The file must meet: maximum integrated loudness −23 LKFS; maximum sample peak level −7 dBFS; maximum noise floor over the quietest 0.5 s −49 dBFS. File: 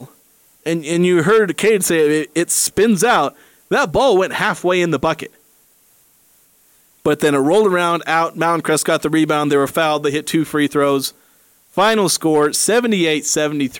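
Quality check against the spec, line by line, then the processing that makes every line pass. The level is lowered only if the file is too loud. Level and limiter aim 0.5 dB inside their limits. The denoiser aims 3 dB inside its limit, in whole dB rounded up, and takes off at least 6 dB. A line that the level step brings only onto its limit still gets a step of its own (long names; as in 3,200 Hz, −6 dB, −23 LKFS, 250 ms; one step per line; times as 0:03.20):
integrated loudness −16.0 LKFS: out of spec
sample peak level −6.0 dBFS: out of spec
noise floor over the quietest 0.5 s −54 dBFS: in spec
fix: level −7.5 dB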